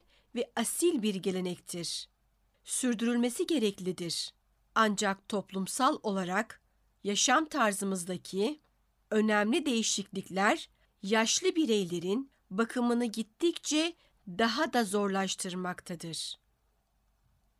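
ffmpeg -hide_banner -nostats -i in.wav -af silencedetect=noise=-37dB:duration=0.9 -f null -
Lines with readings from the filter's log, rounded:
silence_start: 16.33
silence_end: 17.60 | silence_duration: 1.27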